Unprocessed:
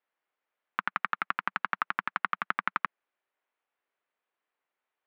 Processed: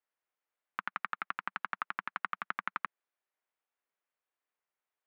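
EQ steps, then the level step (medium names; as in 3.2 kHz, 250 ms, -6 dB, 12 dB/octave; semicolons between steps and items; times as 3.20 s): bass shelf 110 Hz -7 dB; -6.5 dB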